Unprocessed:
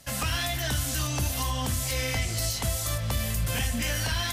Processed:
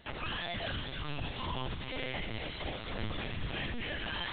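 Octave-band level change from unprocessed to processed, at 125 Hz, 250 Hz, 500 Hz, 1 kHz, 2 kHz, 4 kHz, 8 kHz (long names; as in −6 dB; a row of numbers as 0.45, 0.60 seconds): −12.5 dB, −7.0 dB, −6.0 dB, −6.0 dB, −6.0 dB, −7.5 dB, below −40 dB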